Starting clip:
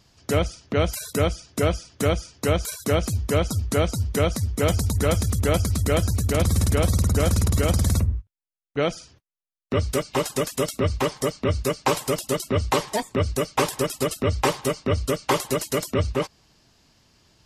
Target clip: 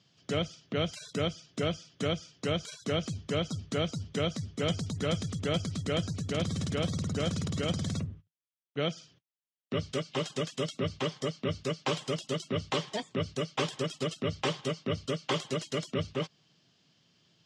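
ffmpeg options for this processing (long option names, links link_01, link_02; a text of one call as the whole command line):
ffmpeg -i in.wav -af "highpass=frequency=110:width=0.5412,highpass=frequency=110:width=1.3066,equalizer=frequency=160:width_type=q:width=4:gain=8,equalizer=frequency=910:width_type=q:width=4:gain=-6,equalizer=frequency=3200:width_type=q:width=4:gain=9,lowpass=frequency=6900:width=0.5412,lowpass=frequency=6900:width=1.3066,volume=-9dB" out.wav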